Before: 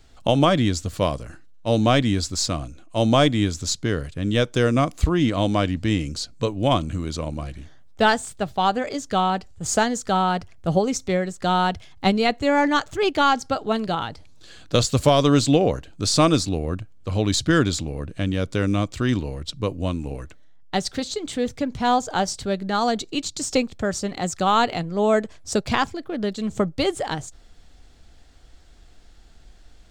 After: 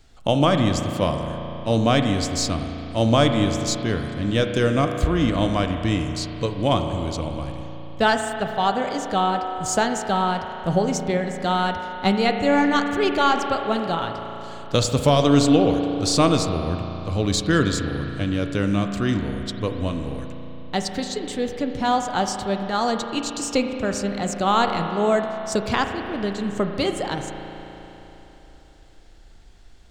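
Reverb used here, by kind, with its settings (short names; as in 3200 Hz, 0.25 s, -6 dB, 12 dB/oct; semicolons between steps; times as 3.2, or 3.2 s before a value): spring tank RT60 3.7 s, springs 35 ms, chirp 65 ms, DRR 5 dB; gain -1 dB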